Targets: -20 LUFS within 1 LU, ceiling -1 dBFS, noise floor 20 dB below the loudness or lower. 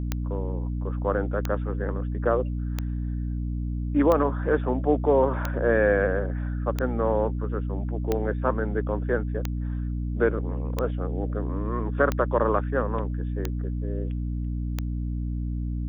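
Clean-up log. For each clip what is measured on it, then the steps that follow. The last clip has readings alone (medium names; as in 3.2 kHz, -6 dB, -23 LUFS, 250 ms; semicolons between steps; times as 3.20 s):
clicks found 12; hum 60 Hz; highest harmonic 300 Hz; hum level -26 dBFS; loudness -27.0 LUFS; peak level -7.5 dBFS; loudness target -20.0 LUFS
-> de-click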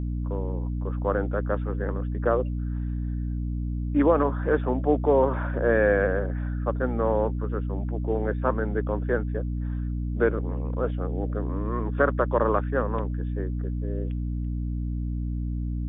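clicks found 0; hum 60 Hz; highest harmonic 300 Hz; hum level -26 dBFS
-> de-hum 60 Hz, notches 5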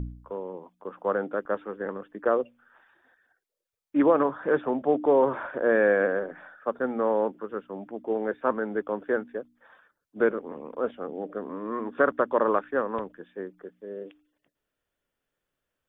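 hum not found; loudness -27.0 LUFS; peak level -9.0 dBFS; loudness target -20.0 LUFS
-> trim +7 dB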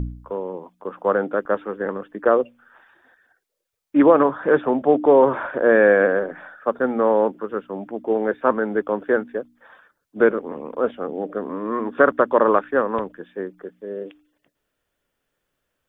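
loudness -20.0 LUFS; peak level -2.0 dBFS; noise floor -77 dBFS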